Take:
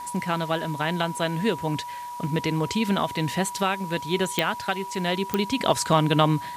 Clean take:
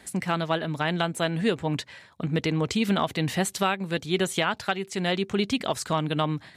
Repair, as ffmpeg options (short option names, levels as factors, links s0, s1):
-af "adeclick=t=4,bandreject=f=970:w=30,afwtdn=0.0035,asetnsamples=n=441:p=0,asendcmd='5.59 volume volume -6dB',volume=1"